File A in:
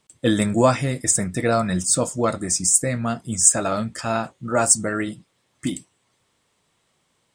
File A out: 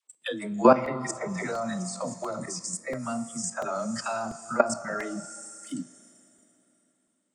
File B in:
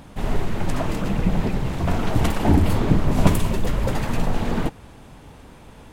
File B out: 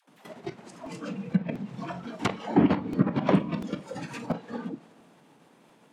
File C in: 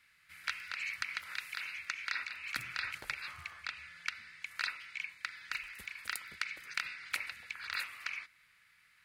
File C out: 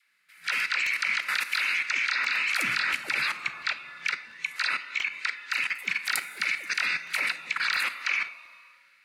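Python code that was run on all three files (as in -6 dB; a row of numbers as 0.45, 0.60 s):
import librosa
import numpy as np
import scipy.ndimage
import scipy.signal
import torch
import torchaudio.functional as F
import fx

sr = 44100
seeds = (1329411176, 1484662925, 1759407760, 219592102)

y = fx.dispersion(x, sr, late='lows', ms=101.0, hz=420.0)
y = fx.level_steps(y, sr, step_db=16)
y = scipy.signal.sosfilt(scipy.signal.butter(4, 170.0, 'highpass', fs=sr, output='sos'), y)
y = fx.rev_schroeder(y, sr, rt60_s=3.8, comb_ms=27, drr_db=10.5)
y = fx.env_lowpass_down(y, sr, base_hz=2900.0, full_db=-24.5)
y = fx.noise_reduce_blind(y, sr, reduce_db=11)
y = fx.buffer_crackle(y, sr, first_s=0.86, period_s=0.69, block=128, kind='repeat')
y = y * 10.0 ** (-30 / 20.0) / np.sqrt(np.mean(np.square(y)))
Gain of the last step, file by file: +3.0, +3.0, +21.0 dB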